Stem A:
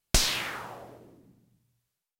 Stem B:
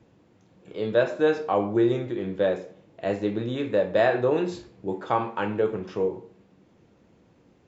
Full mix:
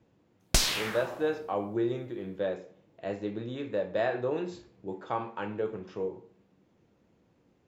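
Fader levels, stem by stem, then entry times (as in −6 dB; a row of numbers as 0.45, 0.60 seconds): −1.0, −8.0 decibels; 0.40, 0.00 seconds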